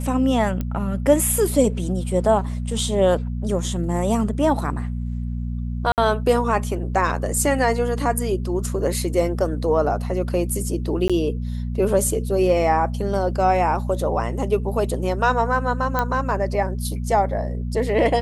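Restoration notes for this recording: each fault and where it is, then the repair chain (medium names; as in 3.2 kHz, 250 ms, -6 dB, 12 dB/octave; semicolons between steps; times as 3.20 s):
hum 60 Hz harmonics 4 -26 dBFS
0.61 s: pop -14 dBFS
5.92–5.98 s: dropout 58 ms
11.08–11.10 s: dropout 16 ms
15.99 s: pop -8 dBFS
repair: de-click; de-hum 60 Hz, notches 4; interpolate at 5.92 s, 58 ms; interpolate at 11.08 s, 16 ms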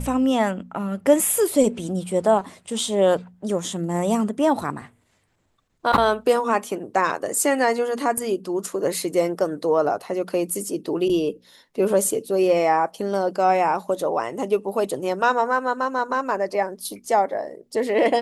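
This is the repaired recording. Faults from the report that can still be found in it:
nothing left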